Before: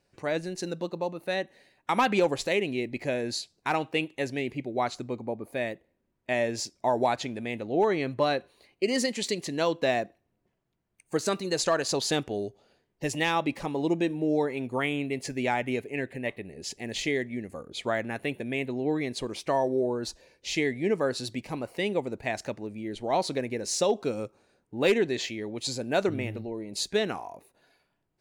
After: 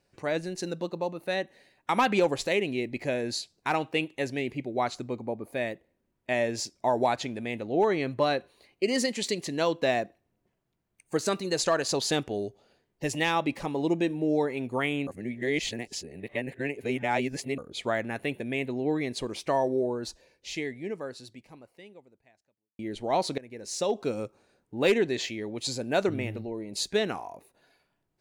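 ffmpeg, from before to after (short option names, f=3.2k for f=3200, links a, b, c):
-filter_complex "[0:a]asplit=5[a][b][c][d][e];[a]atrim=end=15.072[f];[b]atrim=start=15.068:end=17.582,asetpts=PTS-STARTPTS,areverse[g];[c]atrim=start=17.578:end=22.79,asetpts=PTS-STARTPTS,afade=t=out:st=2.102:d=3.11:c=qua[h];[d]atrim=start=22.79:end=23.38,asetpts=PTS-STARTPTS,afade=t=in:d=0.004:c=hsin,afade=t=out:st=0.586:d=0.004:c=hsin:silence=0.105925[i];[e]atrim=start=23.38,asetpts=PTS-STARTPTS,afade=t=in:d=0.73:silence=0.105925[j];[f][g]acrossfade=d=0.004:c1=hsin:c2=hsin[k];[h][i][j]concat=n=3:v=0:a=1[l];[k][l]acrossfade=d=0.004:c1=hsin:c2=hsin"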